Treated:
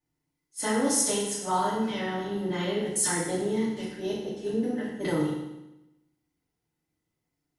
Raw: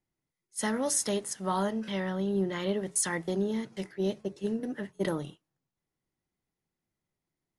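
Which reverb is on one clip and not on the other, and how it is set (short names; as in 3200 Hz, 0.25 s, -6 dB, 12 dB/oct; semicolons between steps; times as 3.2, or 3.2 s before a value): FDN reverb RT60 0.94 s, low-frequency decay 1.2×, high-frequency decay 0.95×, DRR -8.5 dB; gain -5 dB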